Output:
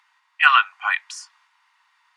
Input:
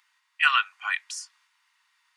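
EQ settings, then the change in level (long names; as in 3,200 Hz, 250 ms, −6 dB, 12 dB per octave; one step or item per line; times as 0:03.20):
high-pass filter 530 Hz
low-pass filter 4,000 Hz 6 dB per octave
parametric band 790 Hz +9 dB 1.3 octaves
+4.5 dB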